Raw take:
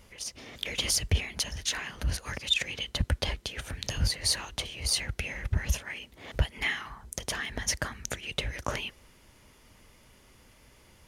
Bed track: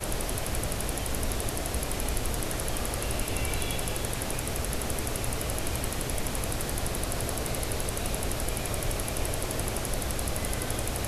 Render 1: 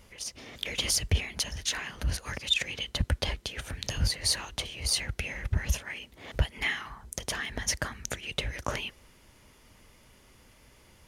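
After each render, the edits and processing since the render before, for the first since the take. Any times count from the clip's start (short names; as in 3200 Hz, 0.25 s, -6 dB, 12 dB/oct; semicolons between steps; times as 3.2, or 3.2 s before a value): nothing audible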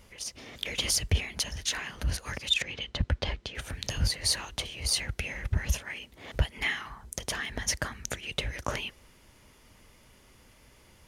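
2.62–3.55 air absorption 110 m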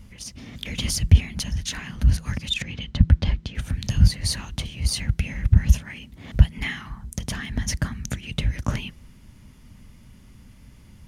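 resonant low shelf 300 Hz +12 dB, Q 1.5; de-hum 163 Hz, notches 2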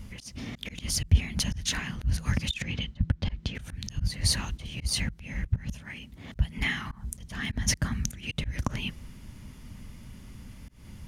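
vocal rider within 3 dB 0.5 s; auto swell 0.196 s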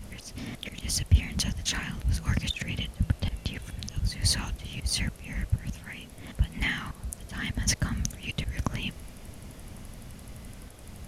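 add bed track -19.5 dB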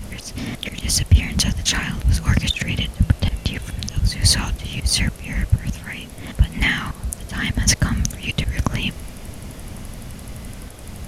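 gain +10 dB; limiter -2 dBFS, peak gain reduction 3 dB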